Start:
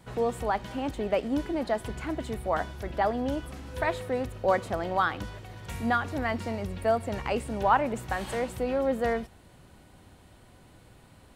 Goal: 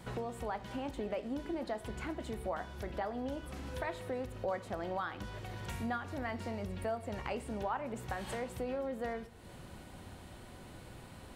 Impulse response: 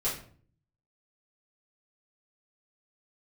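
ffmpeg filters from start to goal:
-filter_complex "[0:a]acompressor=threshold=-44dB:ratio=3,asplit=2[link_01][link_02];[link_02]highpass=120,lowpass=7400[link_03];[1:a]atrim=start_sample=2205,asetrate=34839,aresample=44100[link_04];[link_03][link_04]afir=irnorm=-1:irlink=0,volume=-19dB[link_05];[link_01][link_05]amix=inputs=2:normalize=0,volume=3dB"

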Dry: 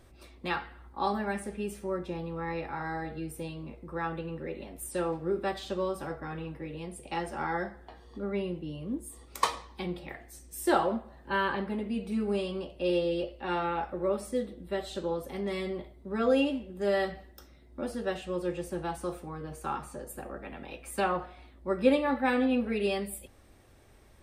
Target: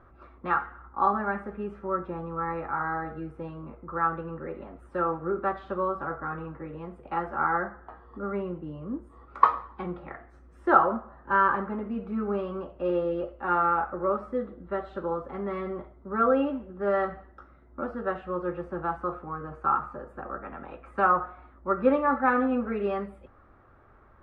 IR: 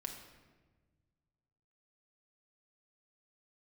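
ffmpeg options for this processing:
-af "lowpass=frequency=1300:width_type=q:width=4.9"

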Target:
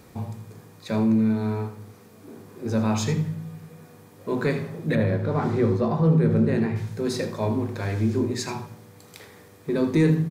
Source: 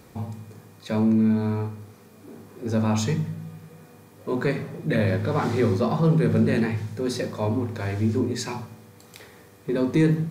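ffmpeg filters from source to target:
ffmpeg -i in.wav -filter_complex "[0:a]asettb=1/sr,asplit=3[link_01][link_02][link_03];[link_01]atrim=end=4.954[link_04];[link_02]atrim=start=4.95:end=6.76,asetpts=PTS-STARTPTS,afade=type=in:duration=0.004:curve=qsin,afade=type=out:start_time=1.806:duration=0.004:curve=qsin,highshelf=frequency=2000:gain=-10.5[link_05];[link_03]atrim=start=6.756[link_06];[link_04][link_05]acrossfade=duration=0.004:curve1=hsin:curve2=qsin[link_07];[link_07][link_06]acrossfade=duration=0.004:curve1=qsin:curve2=hsin,asplit=2[link_08][link_09];[link_09]aecho=0:1:80:0.224[link_10];[link_08][link_10]amix=inputs=2:normalize=0" out.wav

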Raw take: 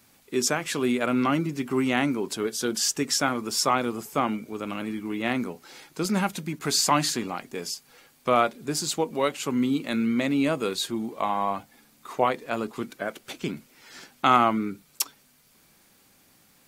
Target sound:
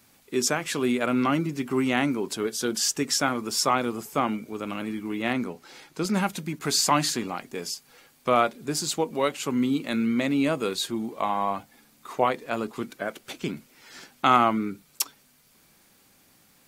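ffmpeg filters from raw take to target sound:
ffmpeg -i in.wav -filter_complex "[0:a]asettb=1/sr,asplit=3[link_01][link_02][link_03];[link_01]atrim=end=5.334[link_04];[link_02]atrim=start=5.33:end=6.14,asetpts=PTS-STARTPTS,afade=type=in:duration=0.004:curve=qsin,afade=type=out:start_time=0.806:duration=0.004:curve=qsin,highshelf=frequency=8800:gain=-6[link_05];[link_03]atrim=start=6.136[link_06];[link_04][link_05]acrossfade=duration=0.004:curve1=hsin:curve2=qsin[link_07];[link_07][link_06]acrossfade=duration=0.004:curve1=qsin:curve2=hsin" out.wav

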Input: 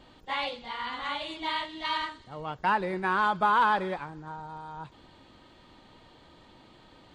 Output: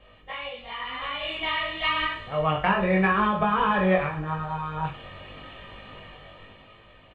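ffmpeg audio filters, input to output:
ffmpeg -i in.wav -filter_complex "[0:a]highshelf=frequency=3700:width_type=q:width=3:gain=-11,aecho=1:1:1.7:0.51,aecho=1:1:20|43|69.45|99.87|134.8:0.631|0.398|0.251|0.158|0.1,acrossover=split=410[link_01][link_02];[link_02]acompressor=threshold=-30dB:ratio=10[link_03];[link_01][link_03]amix=inputs=2:normalize=0,flanger=delay=18:depth=3.6:speed=0.88,dynaudnorm=framelen=220:gausssize=13:maxgain=12dB" out.wav

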